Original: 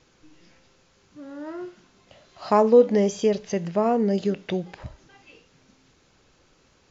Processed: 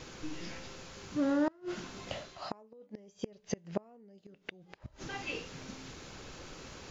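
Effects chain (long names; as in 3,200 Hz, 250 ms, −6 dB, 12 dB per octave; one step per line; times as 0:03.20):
reversed playback
downward compressor 5 to 1, threshold −37 dBFS, peak gain reduction 23 dB
reversed playback
gate with flip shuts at −32 dBFS, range −32 dB
level +12.5 dB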